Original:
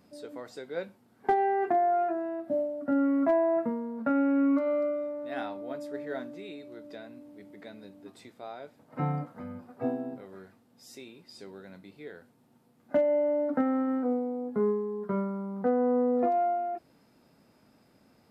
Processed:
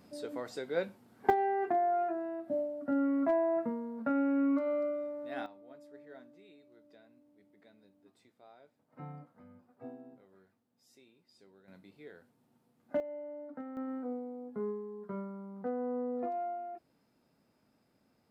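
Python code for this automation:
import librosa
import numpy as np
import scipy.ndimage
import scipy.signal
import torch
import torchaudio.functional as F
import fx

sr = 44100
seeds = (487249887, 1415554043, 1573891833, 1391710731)

y = fx.gain(x, sr, db=fx.steps((0.0, 2.0), (1.3, -4.5), (5.46, -16.0), (11.68, -7.0), (13.0, -17.0), (13.77, -10.0)))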